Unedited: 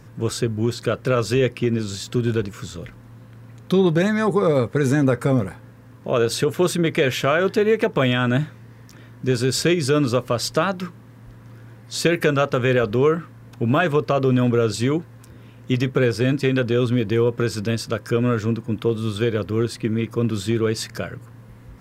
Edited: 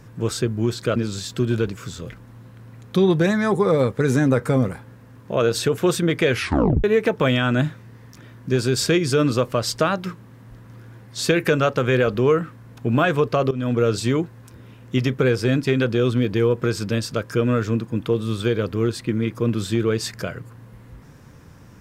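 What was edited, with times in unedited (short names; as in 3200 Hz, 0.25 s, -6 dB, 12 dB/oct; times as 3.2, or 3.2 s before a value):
0.96–1.72 cut
7.07 tape stop 0.53 s
14.27–14.58 fade in, from -16 dB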